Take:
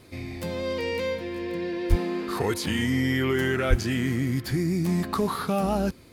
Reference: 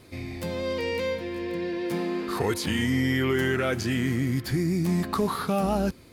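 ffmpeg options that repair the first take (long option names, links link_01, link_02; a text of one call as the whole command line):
ffmpeg -i in.wav -filter_complex "[0:a]asplit=3[link_01][link_02][link_03];[link_01]afade=type=out:start_time=1.89:duration=0.02[link_04];[link_02]highpass=frequency=140:width=0.5412,highpass=frequency=140:width=1.3066,afade=type=in:start_time=1.89:duration=0.02,afade=type=out:start_time=2.01:duration=0.02[link_05];[link_03]afade=type=in:start_time=2.01:duration=0.02[link_06];[link_04][link_05][link_06]amix=inputs=3:normalize=0,asplit=3[link_07][link_08][link_09];[link_07]afade=type=out:start_time=3.69:duration=0.02[link_10];[link_08]highpass=frequency=140:width=0.5412,highpass=frequency=140:width=1.3066,afade=type=in:start_time=3.69:duration=0.02,afade=type=out:start_time=3.81:duration=0.02[link_11];[link_09]afade=type=in:start_time=3.81:duration=0.02[link_12];[link_10][link_11][link_12]amix=inputs=3:normalize=0" out.wav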